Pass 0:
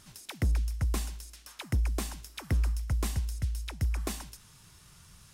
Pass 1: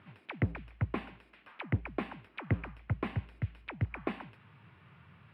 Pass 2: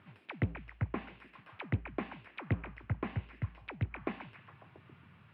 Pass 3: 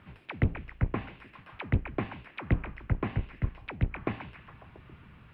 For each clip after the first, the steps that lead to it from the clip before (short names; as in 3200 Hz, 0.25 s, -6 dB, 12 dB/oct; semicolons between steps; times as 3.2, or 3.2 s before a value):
elliptic band-pass 100–2500 Hz, stop band 40 dB; gain +2.5 dB
treble ducked by the level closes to 2400 Hz, closed at -29 dBFS; delay with a stepping band-pass 0.137 s, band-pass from 3400 Hz, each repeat -0.7 oct, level -7 dB; gain -2 dB
octaver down 1 oct, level -1 dB; gain +4.5 dB